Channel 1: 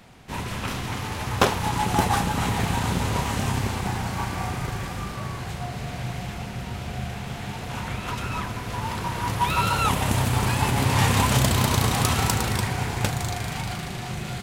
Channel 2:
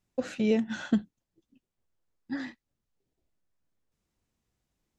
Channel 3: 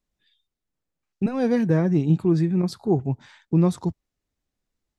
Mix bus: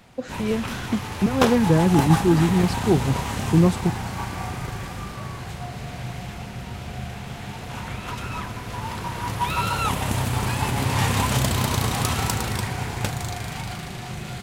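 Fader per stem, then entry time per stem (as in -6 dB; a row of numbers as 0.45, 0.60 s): -1.5, +0.5, +2.0 dB; 0.00, 0.00, 0.00 s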